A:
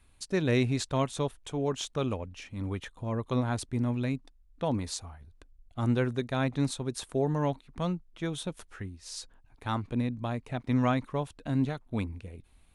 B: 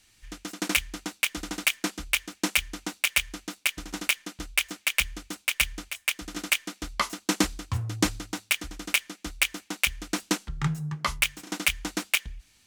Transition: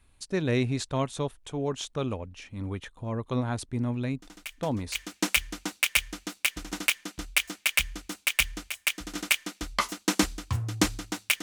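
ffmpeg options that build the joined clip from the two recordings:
-filter_complex "[1:a]asplit=2[s0][s1];[0:a]apad=whole_dur=11.42,atrim=end=11.42,atrim=end=4.952[s2];[s1]atrim=start=2.158:end=8.63[s3];[s0]atrim=start=1.43:end=2.16,asetpts=PTS-STARTPTS,volume=0.158,afade=t=in:d=0.004:c=hsin,afade=t=out:st=0.726:d=0.004:c=hsin,adelay=4220[s4];[s2][s3]acrossfade=d=0.004:c1=hsin:c2=hsin[s5];[s5][s4]amix=inputs=2:normalize=0"

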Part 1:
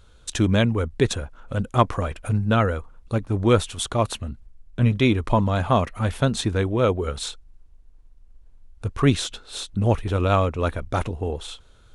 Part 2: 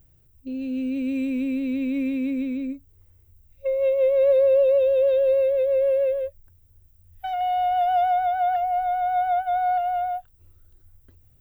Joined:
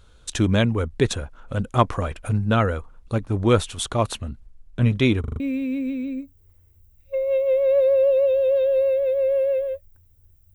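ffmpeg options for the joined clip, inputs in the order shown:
-filter_complex "[0:a]apad=whole_dur=10.54,atrim=end=10.54,asplit=5[s0][s1][s2][s3][s4];[s0]atrim=end=5.242[s5];[s1]atrim=start=5.198:end=5.242[s6];[s2]atrim=start=5.198:end=5.242[s7];[s3]atrim=start=5.198:end=5.242[s8];[s4]atrim=start=5.198:end=5.242[s9];[1:a]atrim=start=1.918:end=7.06[s10];[s5][s6]acrossfade=d=0.004:c1=hsin:c2=hsin[s11];[s11][s7]acrossfade=d=0.004:c1=hsin:c2=hsin[s12];[s12][s8]acrossfade=d=0.004:c1=hsin:c2=hsin[s13];[s13][s9]acrossfade=d=0.004:c1=hsin:c2=hsin[s14];[s14][s10]acrossfade=d=0.004:c1=hsin:c2=hsin"

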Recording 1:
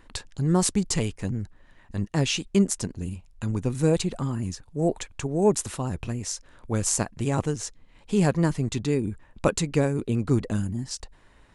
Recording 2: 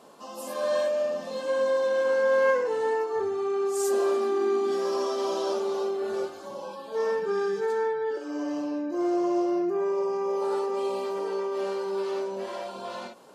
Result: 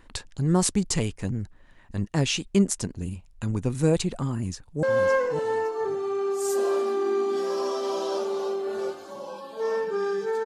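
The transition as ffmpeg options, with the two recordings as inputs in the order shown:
-filter_complex "[0:a]apad=whole_dur=10.45,atrim=end=10.45,atrim=end=4.832[s0];[1:a]atrim=start=2.178:end=7.8[s1];[s0][s1]acrossfade=d=0.004:c1=hsin:c2=hsin,asplit=2[s2][s3];[s3]afade=t=in:st=4.32:d=0.01,afade=t=out:st=4.83:d=0.01,aecho=0:1:560|1120|1680:0.421697|0.0843393|0.0168679[s4];[s2][s4]amix=inputs=2:normalize=0"

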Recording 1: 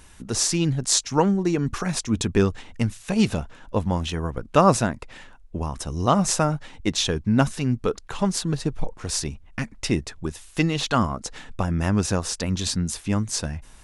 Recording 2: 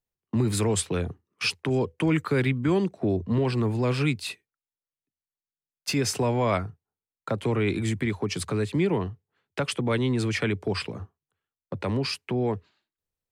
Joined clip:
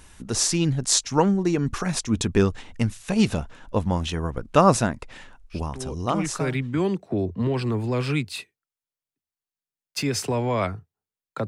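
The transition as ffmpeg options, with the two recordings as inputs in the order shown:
-filter_complex "[0:a]apad=whole_dur=11.47,atrim=end=11.47,atrim=end=6.87,asetpts=PTS-STARTPTS[s0];[1:a]atrim=start=1.34:end=7.38,asetpts=PTS-STARTPTS[s1];[s0][s1]acrossfade=d=1.44:c1=tri:c2=tri"

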